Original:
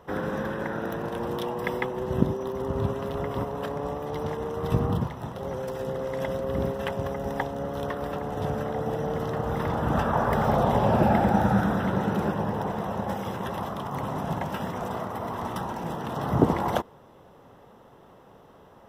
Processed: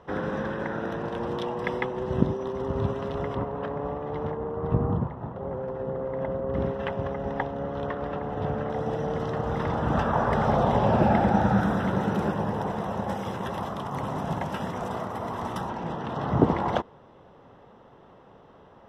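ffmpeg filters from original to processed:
-af "asetnsamples=n=441:p=0,asendcmd='3.35 lowpass f 2200;4.31 lowpass f 1300;6.54 lowpass f 2900;8.7 lowpass f 6100;11.61 lowpass f 10000;15.69 lowpass f 4300',lowpass=5.2k"

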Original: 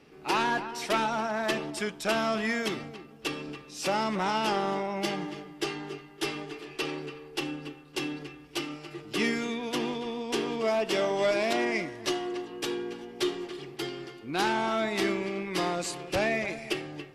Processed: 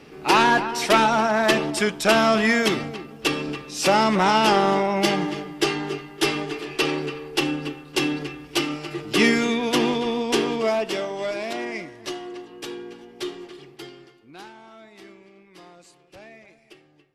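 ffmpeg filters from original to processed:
-af "volume=10dB,afade=t=out:st=10.17:d=0.9:silence=0.251189,afade=t=out:st=13.5:d=0.66:silence=0.446684,afade=t=out:st=14.16:d=0.36:silence=0.354813"

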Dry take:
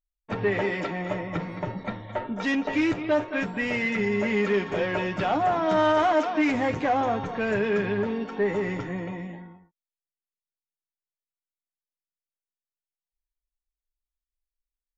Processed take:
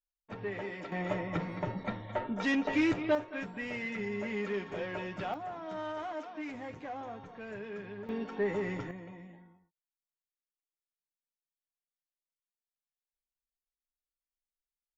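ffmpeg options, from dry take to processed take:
-af "asetnsamples=n=441:p=0,asendcmd='0.92 volume volume -4dB;3.15 volume volume -11dB;5.34 volume volume -17.5dB;8.09 volume volume -6.5dB;8.91 volume volume -14dB',volume=-13dB"

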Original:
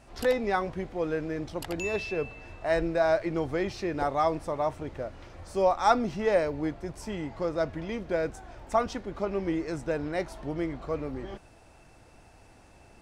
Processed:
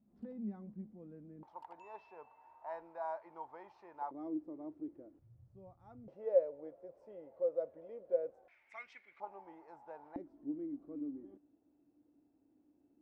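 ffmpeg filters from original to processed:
-af "asetnsamples=n=441:p=0,asendcmd='1.43 bandpass f 920;4.11 bandpass f 310;5.19 bandpass f 120;6.08 bandpass f 530;8.48 bandpass f 2200;9.2 bandpass f 860;10.16 bandpass f 290',bandpass=f=210:t=q:w=12:csg=0"

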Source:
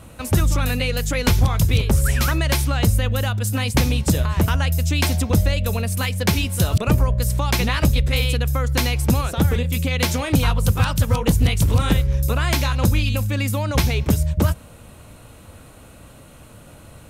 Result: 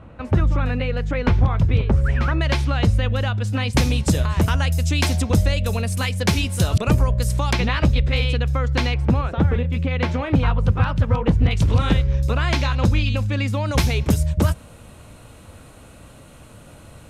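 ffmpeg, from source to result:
-af "asetnsamples=n=441:p=0,asendcmd='2.41 lowpass f 3900;3.73 lowpass f 9400;7.53 lowpass f 3800;8.94 lowpass f 2100;11.51 lowpass f 4600;13.66 lowpass f 11000',lowpass=1.9k"

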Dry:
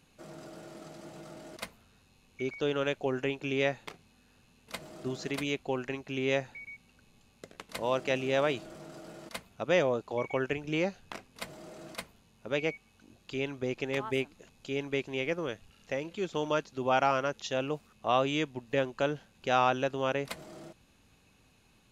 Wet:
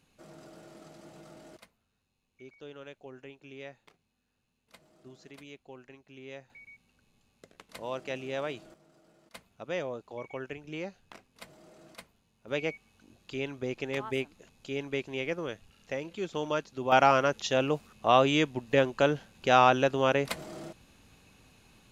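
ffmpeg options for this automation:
-af "asetnsamples=n=441:p=0,asendcmd='1.58 volume volume -16dB;6.5 volume volume -6.5dB;8.74 volume volume -16dB;9.34 volume volume -8dB;12.48 volume volume -1dB;16.92 volume volume 5dB',volume=-4dB"

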